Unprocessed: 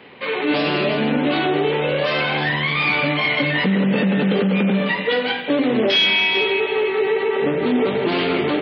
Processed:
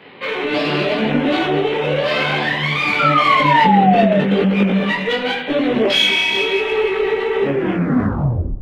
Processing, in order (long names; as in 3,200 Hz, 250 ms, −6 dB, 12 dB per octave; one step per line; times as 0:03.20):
turntable brake at the end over 1.17 s
feedback echo with a low-pass in the loop 103 ms, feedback 61%, low-pass 1,500 Hz, level −17.5 dB
in parallel at −6 dB: asymmetric clip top −23.5 dBFS, bottom −12.5 dBFS
on the sum: sound drawn into the spectrogram fall, 0:02.99–0:04.19, 600–1,400 Hz −14 dBFS
micro pitch shift up and down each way 30 cents
level +2.5 dB